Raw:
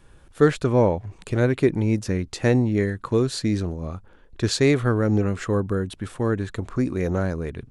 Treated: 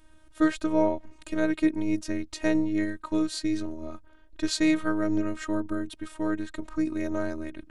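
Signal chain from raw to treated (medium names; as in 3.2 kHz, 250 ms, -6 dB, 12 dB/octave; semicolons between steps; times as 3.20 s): robot voice 312 Hz; trim -2 dB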